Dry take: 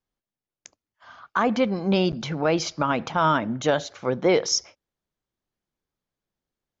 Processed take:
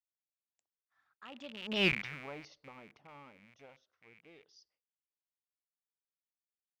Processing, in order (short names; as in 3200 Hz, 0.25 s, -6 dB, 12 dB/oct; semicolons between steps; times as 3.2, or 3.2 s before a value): rattling part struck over -36 dBFS, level -14 dBFS; Doppler pass-by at 1.87, 35 m/s, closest 1.8 m; LFO bell 0.33 Hz 310–3500 Hz +7 dB; gain -8 dB